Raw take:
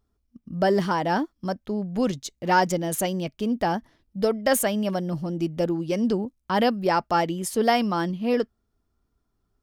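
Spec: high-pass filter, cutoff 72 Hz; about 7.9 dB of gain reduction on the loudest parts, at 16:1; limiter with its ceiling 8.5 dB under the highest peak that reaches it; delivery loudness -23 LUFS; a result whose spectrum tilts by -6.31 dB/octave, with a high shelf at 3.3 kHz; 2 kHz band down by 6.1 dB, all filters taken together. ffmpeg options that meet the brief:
-af "highpass=72,equalizer=f=2000:t=o:g=-6.5,highshelf=f=3300:g=-6.5,acompressor=threshold=0.0631:ratio=16,volume=2.66,alimiter=limit=0.211:level=0:latency=1"

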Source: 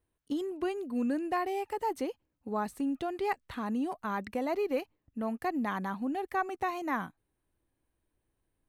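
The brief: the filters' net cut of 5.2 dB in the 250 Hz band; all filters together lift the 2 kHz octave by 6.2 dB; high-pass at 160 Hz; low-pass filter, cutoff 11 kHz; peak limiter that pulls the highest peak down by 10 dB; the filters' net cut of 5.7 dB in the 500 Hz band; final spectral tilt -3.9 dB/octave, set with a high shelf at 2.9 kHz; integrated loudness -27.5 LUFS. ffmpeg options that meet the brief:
-af "highpass=160,lowpass=11000,equalizer=f=250:t=o:g=-3.5,equalizer=f=500:t=o:g=-7,equalizer=f=2000:t=o:g=6.5,highshelf=f=2900:g=5,volume=2.99,alimiter=limit=0.178:level=0:latency=1"

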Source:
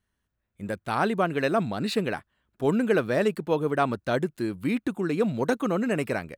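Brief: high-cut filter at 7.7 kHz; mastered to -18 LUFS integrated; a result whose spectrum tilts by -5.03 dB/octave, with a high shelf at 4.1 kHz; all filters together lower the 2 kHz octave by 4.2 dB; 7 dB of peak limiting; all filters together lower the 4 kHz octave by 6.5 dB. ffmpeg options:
-af "lowpass=7700,equalizer=f=2000:t=o:g=-5,equalizer=f=4000:t=o:g=-8.5,highshelf=f=4100:g=4.5,volume=3.76,alimiter=limit=0.422:level=0:latency=1"

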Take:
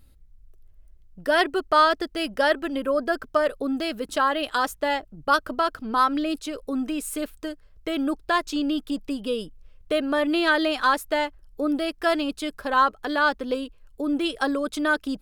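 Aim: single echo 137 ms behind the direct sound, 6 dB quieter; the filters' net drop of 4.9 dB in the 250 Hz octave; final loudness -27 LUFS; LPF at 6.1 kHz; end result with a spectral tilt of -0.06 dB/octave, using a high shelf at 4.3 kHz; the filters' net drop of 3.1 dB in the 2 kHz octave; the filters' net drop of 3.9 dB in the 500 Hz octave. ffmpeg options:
-af "lowpass=6100,equalizer=f=250:t=o:g=-4.5,equalizer=f=500:t=o:g=-4,equalizer=f=2000:t=o:g=-4.5,highshelf=f=4300:g=3,aecho=1:1:137:0.501,volume=0.944"

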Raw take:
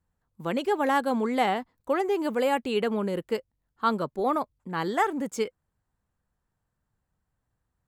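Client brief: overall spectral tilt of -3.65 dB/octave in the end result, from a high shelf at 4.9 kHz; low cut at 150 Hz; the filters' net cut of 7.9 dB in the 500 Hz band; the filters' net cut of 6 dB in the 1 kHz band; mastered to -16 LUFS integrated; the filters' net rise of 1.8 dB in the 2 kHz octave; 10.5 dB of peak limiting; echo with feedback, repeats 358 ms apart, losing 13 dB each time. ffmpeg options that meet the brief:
-af "highpass=150,equalizer=f=500:t=o:g=-8.5,equalizer=f=1000:t=o:g=-6,equalizer=f=2000:t=o:g=5.5,highshelf=f=4900:g=-7.5,alimiter=level_in=1.19:limit=0.0631:level=0:latency=1,volume=0.841,aecho=1:1:358|716|1074:0.224|0.0493|0.0108,volume=9.44"

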